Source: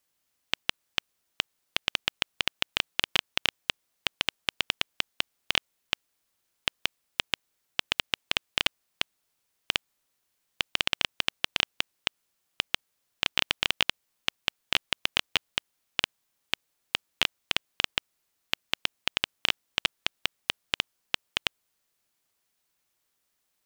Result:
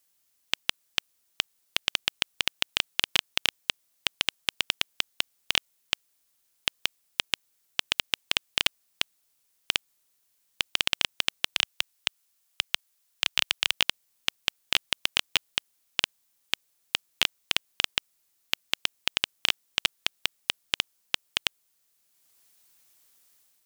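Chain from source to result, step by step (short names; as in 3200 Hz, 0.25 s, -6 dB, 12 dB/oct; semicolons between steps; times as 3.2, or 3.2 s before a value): high shelf 4100 Hz +9.5 dB; AGC gain up to 7.5 dB; 11.55–13.73 bell 200 Hz -12 dB 2 oct; gain -1 dB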